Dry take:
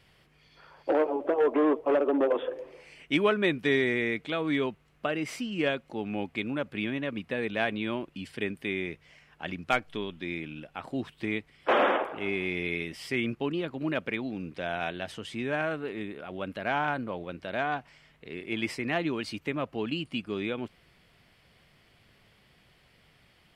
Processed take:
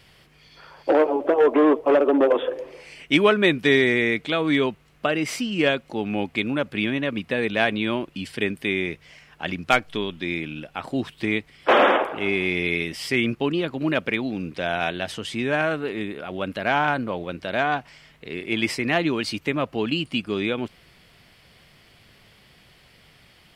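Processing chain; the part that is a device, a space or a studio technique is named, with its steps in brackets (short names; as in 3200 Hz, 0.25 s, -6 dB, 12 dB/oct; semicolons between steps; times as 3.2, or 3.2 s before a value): presence and air boost (bell 4800 Hz +3 dB 1.4 oct; high shelf 9100 Hz +4.5 dB); gain +7 dB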